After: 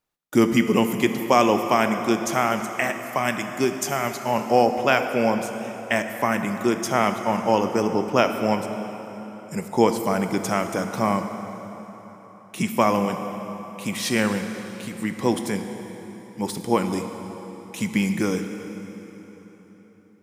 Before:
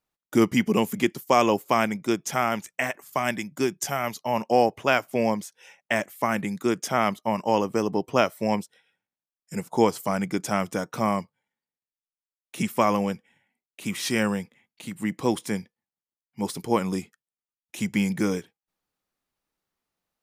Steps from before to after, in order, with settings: plate-style reverb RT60 4.2 s, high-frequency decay 0.75×, pre-delay 0 ms, DRR 6.5 dB; gain +2 dB

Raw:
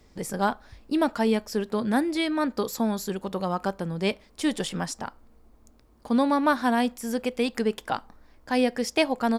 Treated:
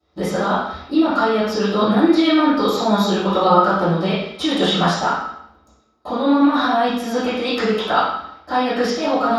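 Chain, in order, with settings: gate -52 dBFS, range -18 dB; tilt +2 dB/oct; negative-ratio compressor -29 dBFS, ratio -1; small resonant body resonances 1300/3800 Hz, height 14 dB, ringing for 45 ms; reverb RT60 0.70 s, pre-delay 3 ms, DRR -19 dB; gain -9.5 dB

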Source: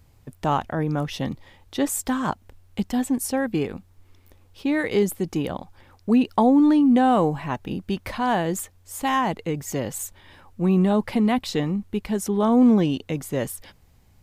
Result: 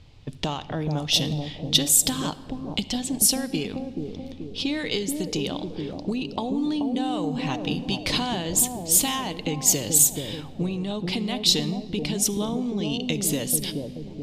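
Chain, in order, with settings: compressor 16:1, threshold -30 dBFS, peak gain reduction 18 dB; resonant high shelf 2400 Hz +13 dB, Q 1.5; analogue delay 0.431 s, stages 2048, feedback 54%, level -3.5 dB; low-pass opened by the level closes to 2200 Hz, open at -23.5 dBFS; reverb RT60 1.9 s, pre-delay 7 ms, DRR 13 dB; gain +5 dB

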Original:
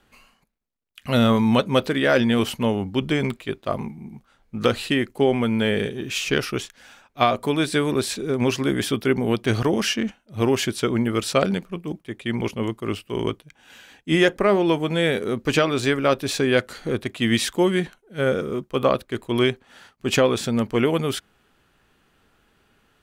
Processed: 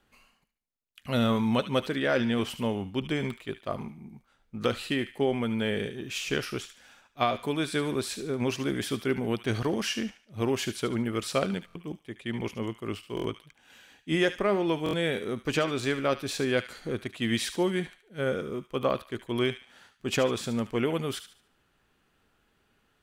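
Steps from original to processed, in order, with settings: 1.91–2.5 high shelf 11000 Hz -9.5 dB; on a send: thin delay 73 ms, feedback 35%, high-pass 1500 Hz, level -10 dB; on the sum: stuck buffer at 11.66/13.15/14.84, samples 1024, times 3; gain -7.5 dB

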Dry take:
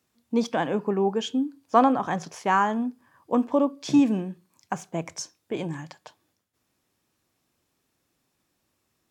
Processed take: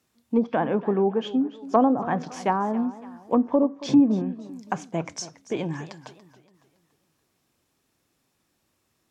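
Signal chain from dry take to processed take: treble ducked by the level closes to 670 Hz, closed at -18 dBFS; warbling echo 0.281 s, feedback 41%, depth 148 cents, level -16.5 dB; gain +2 dB

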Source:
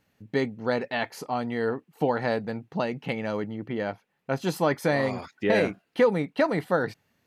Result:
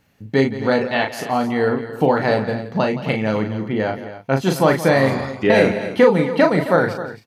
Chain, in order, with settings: bell 66 Hz +3 dB 2.3 oct; doubler 37 ms -5.5 dB; tapped delay 0.169/0.265 s -14.5/-13.5 dB; gain +7.5 dB

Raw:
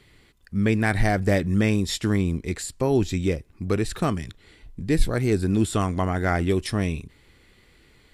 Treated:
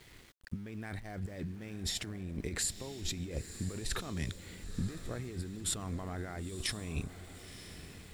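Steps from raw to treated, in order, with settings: negative-ratio compressor -32 dBFS, ratio -1; diffused feedback echo 0.969 s, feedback 44%, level -12 dB; sample gate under -47 dBFS; gain -8 dB

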